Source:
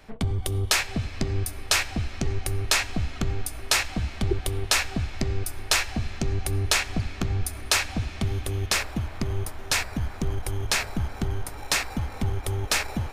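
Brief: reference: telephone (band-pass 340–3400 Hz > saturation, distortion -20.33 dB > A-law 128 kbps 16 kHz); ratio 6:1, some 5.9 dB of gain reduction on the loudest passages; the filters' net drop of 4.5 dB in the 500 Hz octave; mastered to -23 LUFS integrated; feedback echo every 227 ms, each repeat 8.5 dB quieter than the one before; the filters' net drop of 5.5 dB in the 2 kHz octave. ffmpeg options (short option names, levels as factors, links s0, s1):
-af "equalizer=f=500:t=o:g=-4,equalizer=f=2000:t=o:g=-6,acompressor=threshold=0.0501:ratio=6,highpass=340,lowpass=3400,aecho=1:1:227|454|681|908:0.376|0.143|0.0543|0.0206,asoftclip=threshold=0.0841,volume=6.68" -ar 16000 -c:a pcm_alaw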